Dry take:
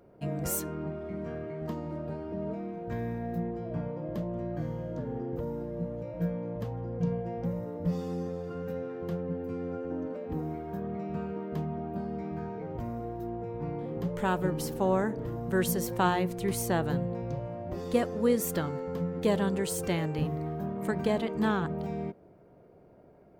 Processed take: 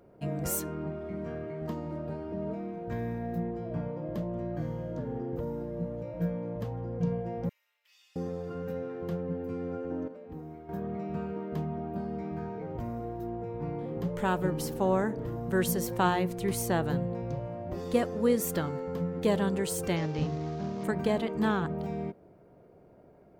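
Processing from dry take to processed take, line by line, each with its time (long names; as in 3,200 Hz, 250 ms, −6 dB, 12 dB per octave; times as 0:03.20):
0:07.49–0:08.16: four-pole ladder high-pass 2,300 Hz, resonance 55%
0:10.08–0:10.69: clip gain −8.5 dB
0:19.96–0:20.84: variable-slope delta modulation 32 kbit/s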